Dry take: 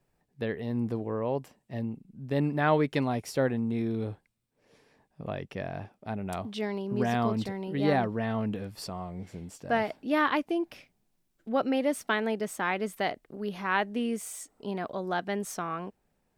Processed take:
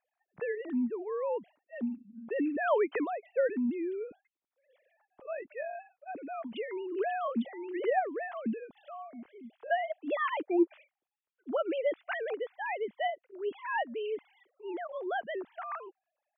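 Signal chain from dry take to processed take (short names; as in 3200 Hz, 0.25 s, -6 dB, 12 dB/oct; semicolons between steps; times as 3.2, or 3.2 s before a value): sine-wave speech; gain -3.5 dB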